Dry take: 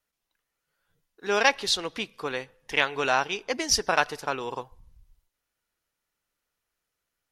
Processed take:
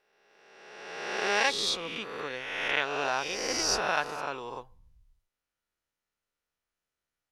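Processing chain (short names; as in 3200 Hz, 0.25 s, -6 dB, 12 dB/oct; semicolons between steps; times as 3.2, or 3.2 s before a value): spectral swells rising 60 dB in 1.63 s; high shelf 11000 Hz -3.5 dB, from 1.7 s -10 dB; gain -8.5 dB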